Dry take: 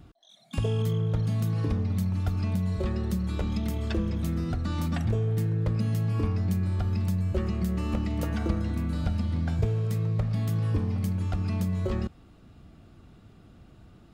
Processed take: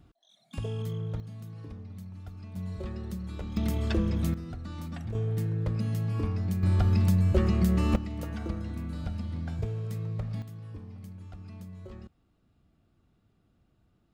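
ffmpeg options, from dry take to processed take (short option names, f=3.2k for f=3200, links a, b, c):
-af "asetnsamples=n=441:p=0,asendcmd='1.2 volume volume -15.5dB;2.56 volume volume -8dB;3.57 volume volume 1dB;4.34 volume volume -9.5dB;5.15 volume volume -3dB;6.63 volume volume 4dB;7.96 volume volume -6.5dB;10.42 volume volume -16dB',volume=-7dB"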